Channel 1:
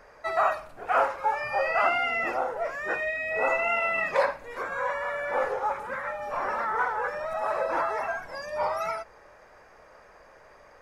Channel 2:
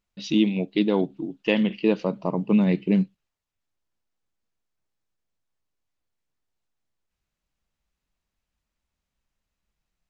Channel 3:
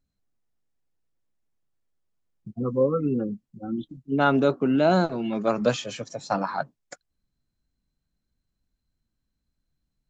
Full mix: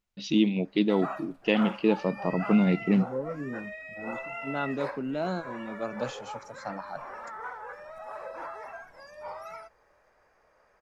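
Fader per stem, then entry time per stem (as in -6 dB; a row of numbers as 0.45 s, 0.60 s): -12.0 dB, -2.5 dB, -11.0 dB; 0.65 s, 0.00 s, 0.35 s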